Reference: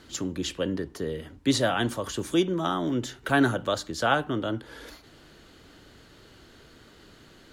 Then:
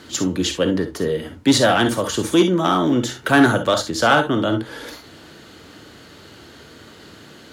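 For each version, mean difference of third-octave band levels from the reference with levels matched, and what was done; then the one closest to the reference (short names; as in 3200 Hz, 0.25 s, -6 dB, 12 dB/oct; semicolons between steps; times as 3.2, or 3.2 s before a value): 2.0 dB: non-linear reverb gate 80 ms rising, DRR 7 dB; in parallel at -10 dB: wavefolder -20.5 dBFS; on the sum: HPF 96 Hz 12 dB/oct; gain +7 dB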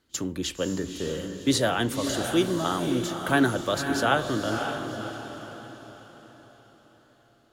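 7.5 dB: gate -39 dBFS, range -19 dB; high shelf 11000 Hz +11 dB; diffused feedback echo 0.549 s, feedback 44%, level -6 dB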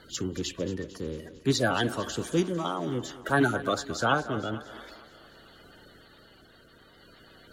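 3.5 dB: bin magnitudes rounded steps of 30 dB; tremolo 0.53 Hz, depth 32%; on a send: thinning echo 0.225 s, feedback 58%, high-pass 230 Hz, level -14.5 dB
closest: first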